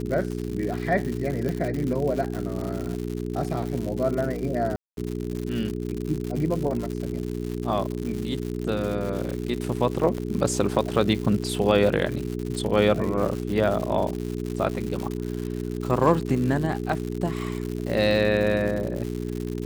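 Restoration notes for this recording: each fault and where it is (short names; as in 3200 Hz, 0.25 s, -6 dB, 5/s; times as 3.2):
crackle 170/s -29 dBFS
hum 60 Hz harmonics 7 -30 dBFS
1.49 pop -17 dBFS
4.76–4.97 gap 0.212 s
10.18 gap 2.4 ms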